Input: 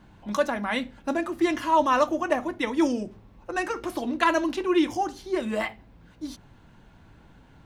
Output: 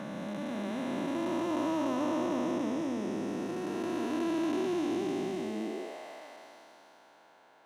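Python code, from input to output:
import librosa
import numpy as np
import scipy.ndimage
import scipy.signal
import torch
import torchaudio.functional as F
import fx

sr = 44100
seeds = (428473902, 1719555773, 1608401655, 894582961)

y = fx.spec_blur(x, sr, span_ms=1130.0)
y = fx.filter_sweep_highpass(y, sr, from_hz=140.0, to_hz=640.0, start_s=5.47, end_s=5.98, q=2.0)
y = fx.dynamic_eq(y, sr, hz=1500.0, q=0.93, threshold_db=-48.0, ratio=4.0, max_db=-6)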